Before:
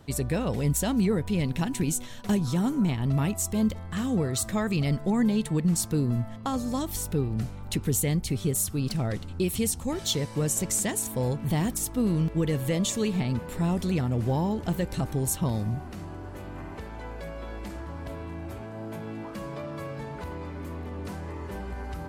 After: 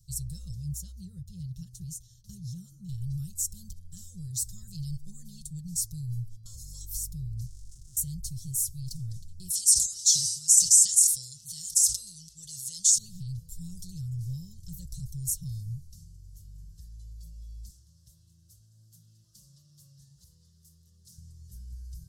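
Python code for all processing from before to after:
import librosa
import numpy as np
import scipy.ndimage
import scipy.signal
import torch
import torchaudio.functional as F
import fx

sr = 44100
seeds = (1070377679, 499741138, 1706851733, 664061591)

y = fx.chain(x, sr, fx.highpass(hz=40.0, slope=12),
    fx.high_shelf(hz=4100.0, db=-11.0),
    fx.notch(hz=7900.0, q=14.0), at=(0.54, 2.89))
y = fx.chain(y, sr, fx.sample_sort(block=128),
    fx.lowpass(hz=9000.0, slope=12),
    fx.level_steps(step_db=20), at=(7.46, 7.97))
y = fx.chain(y, sr, fx.weighting(curve='ITU-R 468'),
    fx.sustainer(db_per_s=64.0), at=(9.5, 12.98))
y = fx.chain(y, sr, fx.highpass(hz=320.0, slope=6),
    fx.doppler_dist(depth_ms=0.14), at=(17.7, 21.18))
y = scipy.signal.sosfilt(scipy.signal.ellip(3, 1.0, 40, [110.0, 5400.0], 'bandstop', fs=sr, output='sos'), y)
y = y + 0.69 * np.pad(y, (int(5.7 * sr / 1000.0), 0))[:len(y)]
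y = y * 10.0 ** (-1.5 / 20.0)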